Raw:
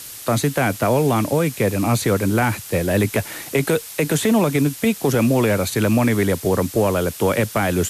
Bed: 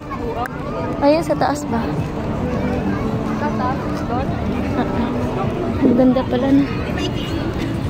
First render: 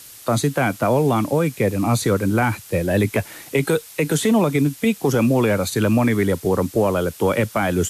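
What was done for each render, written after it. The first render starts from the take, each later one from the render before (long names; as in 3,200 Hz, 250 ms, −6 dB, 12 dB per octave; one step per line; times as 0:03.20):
noise reduction from a noise print 6 dB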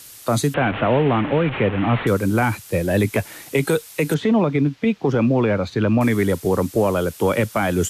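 0:00.54–0:02.07: linear delta modulator 16 kbit/s, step −20.5 dBFS
0:04.14–0:06.01: high-frequency loss of the air 230 metres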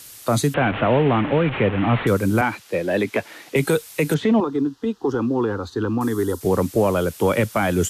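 0:02.41–0:03.56: three-way crossover with the lows and the highs turned down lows −17 dB, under 210 Hz, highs −12 dB, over 5,400 Hz
0:04.40–0:06.41: phaser with its sweep stopped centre 610 Hz, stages 6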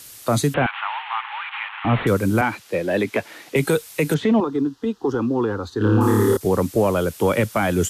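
0:00.66–0:01.85: Chebyshev high-pass filter 830 Hz, order 6
0:05.78–0:06.37: flutter between parallel walls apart 4.8 metres, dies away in 1.2 s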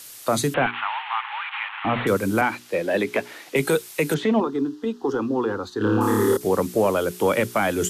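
parametric band 62 Hz −11.5 dB 2.4 octaves
mains-hum notches 60/120/180/240/300/360/420 Hz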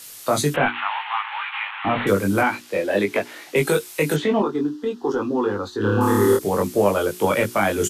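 double-tracking delay 20 ms −3 dB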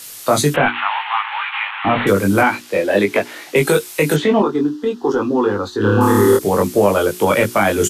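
level +5.5 dB
brickwall limiter −3 dBFS, peak gain reduction 2.5 dB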